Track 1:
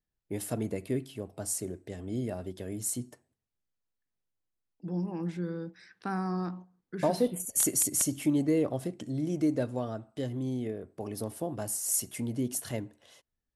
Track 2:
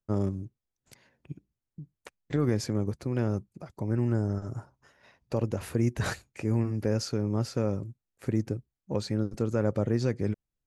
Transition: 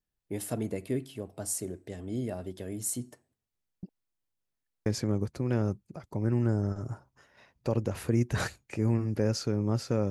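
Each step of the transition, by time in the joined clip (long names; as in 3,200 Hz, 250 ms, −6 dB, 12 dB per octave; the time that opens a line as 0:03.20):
track 1
0:03.83–0:04.86: reverse
0:04.86: continue with track 2 from 0:02.52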